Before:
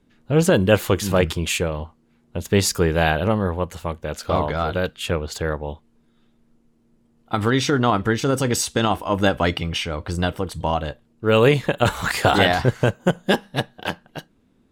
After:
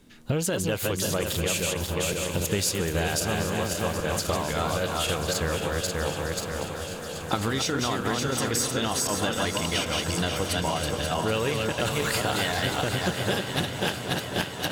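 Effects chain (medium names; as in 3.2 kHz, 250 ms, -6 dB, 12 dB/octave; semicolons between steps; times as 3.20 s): backward echo that repeats 267 ms, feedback 52%, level -3.5 dB; treble shelf 3 kHz +11.5 dB; waveshaping leveller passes 1; compression 10:1, threshold -32 dBFS, peak gain reduction 25.5 dB; shuffle delay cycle 1035 ms, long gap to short 3:1, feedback 76%, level -12.5 dB; trim +7 dB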